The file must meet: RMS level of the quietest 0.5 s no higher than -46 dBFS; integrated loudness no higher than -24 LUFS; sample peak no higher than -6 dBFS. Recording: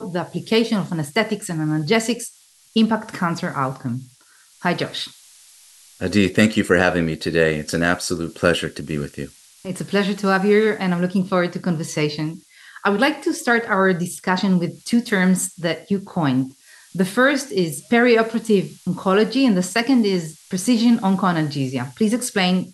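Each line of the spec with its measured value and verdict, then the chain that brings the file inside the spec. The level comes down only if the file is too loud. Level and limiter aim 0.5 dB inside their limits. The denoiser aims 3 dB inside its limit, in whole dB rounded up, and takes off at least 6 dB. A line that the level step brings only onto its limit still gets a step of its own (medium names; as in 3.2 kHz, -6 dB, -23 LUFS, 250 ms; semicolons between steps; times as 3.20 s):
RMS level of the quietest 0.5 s -53 dBFS: pass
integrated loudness -20.0 LUFS: fail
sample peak -2.0 dBFS: fail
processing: trim -4.5 dB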